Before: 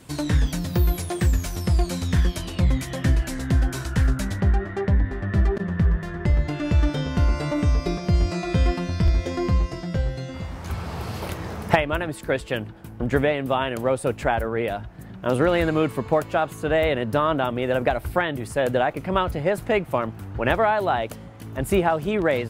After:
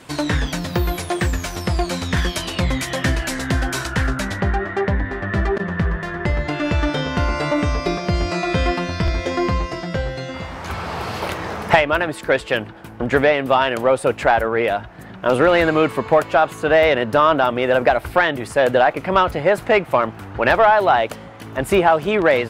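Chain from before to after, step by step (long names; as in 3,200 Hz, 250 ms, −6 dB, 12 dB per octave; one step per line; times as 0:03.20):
mid-hump overdrive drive 13 dB, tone 2,800 Hz, clips at −4 dBFS, from 0:02.17 tone 6,300 Hz, from 0:03.87 tone 3,100 Hz
level +3 dB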